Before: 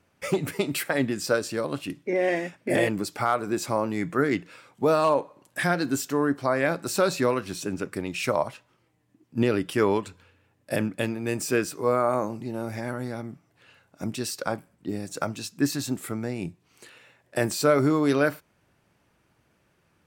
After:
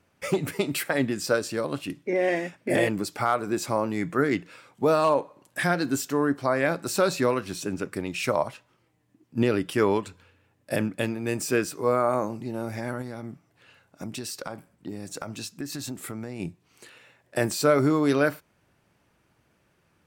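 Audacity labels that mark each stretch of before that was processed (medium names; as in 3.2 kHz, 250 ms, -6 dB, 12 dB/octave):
13.010000	16.400000	compression, threshold -30 dBFS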